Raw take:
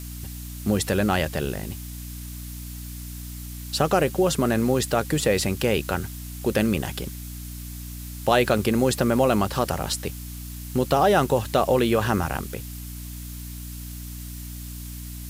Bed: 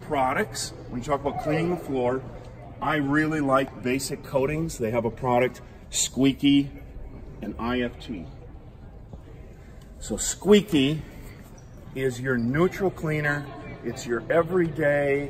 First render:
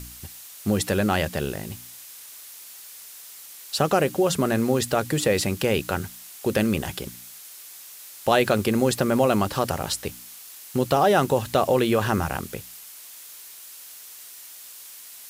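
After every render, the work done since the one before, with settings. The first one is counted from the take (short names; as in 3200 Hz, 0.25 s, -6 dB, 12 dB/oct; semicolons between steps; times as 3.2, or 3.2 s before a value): de-hum 60 Hz, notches 5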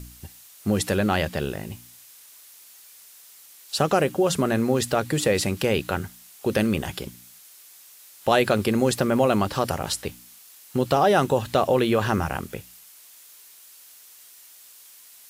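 noise print and reduce 6 dB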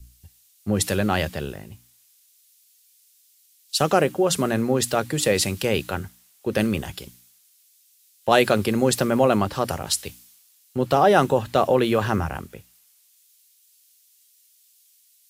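three-band expander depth 70%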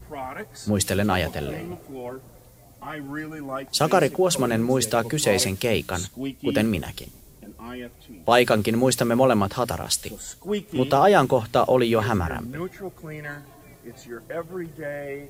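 add bed -10 dB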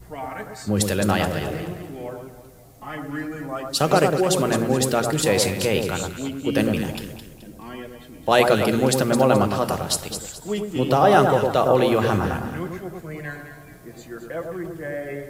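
echo with dull and thin repeats by turns 0.107 s, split 1400 Hz, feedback 59%, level -4 dB; shoebox room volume 1900 m³, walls furnished, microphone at 0.56 m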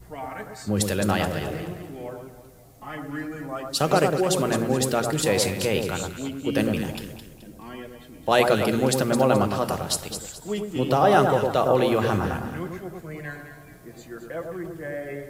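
gain -2.5 dB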